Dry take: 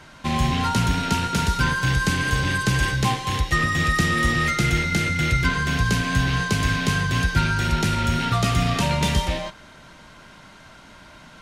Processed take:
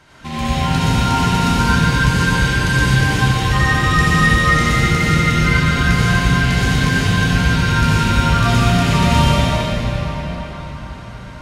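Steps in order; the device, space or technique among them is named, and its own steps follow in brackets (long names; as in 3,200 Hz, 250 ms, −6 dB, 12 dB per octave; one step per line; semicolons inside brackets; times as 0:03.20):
cathedral (convolution reverb RT60 5.3 s, pre-delay 58 ms, DRR −11 dB)
level −4.5 dB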